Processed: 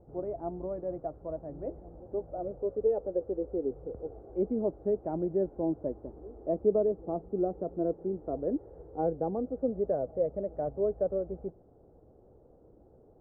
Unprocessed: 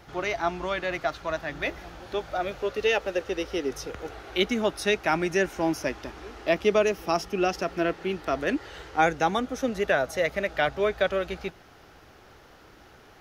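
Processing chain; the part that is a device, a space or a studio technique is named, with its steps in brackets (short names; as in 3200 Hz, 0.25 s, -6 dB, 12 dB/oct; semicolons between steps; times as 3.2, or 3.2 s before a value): under water (LPF 620 Hz 24 dB/oct; bell 490 Hz +4.5 dB 0.34 oct); gain -4 dB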